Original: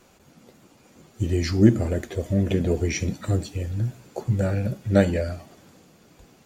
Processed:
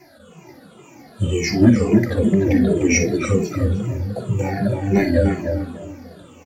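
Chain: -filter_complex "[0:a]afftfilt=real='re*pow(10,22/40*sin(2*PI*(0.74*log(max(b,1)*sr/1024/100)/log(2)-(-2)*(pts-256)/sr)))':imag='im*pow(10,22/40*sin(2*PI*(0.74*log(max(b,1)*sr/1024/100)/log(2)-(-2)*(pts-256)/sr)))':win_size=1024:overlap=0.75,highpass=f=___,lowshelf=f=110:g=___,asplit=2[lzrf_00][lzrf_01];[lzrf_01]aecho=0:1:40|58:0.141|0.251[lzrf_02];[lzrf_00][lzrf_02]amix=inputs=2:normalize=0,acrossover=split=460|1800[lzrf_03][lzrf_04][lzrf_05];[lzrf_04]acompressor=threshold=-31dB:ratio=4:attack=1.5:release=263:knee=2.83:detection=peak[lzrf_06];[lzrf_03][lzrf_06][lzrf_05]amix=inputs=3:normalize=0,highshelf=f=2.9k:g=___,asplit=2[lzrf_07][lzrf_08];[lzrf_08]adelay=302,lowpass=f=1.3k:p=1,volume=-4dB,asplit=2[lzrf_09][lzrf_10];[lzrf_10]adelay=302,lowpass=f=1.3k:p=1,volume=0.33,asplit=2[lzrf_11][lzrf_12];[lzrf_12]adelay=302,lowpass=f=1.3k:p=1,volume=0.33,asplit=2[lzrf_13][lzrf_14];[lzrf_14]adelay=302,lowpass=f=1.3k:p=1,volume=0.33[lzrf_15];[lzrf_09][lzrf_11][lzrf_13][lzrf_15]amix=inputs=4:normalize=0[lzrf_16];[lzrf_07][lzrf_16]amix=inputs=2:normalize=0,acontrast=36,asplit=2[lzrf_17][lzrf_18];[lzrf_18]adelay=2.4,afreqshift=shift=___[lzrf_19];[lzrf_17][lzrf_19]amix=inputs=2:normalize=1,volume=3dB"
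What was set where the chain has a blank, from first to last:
68, -10, -7, -2.6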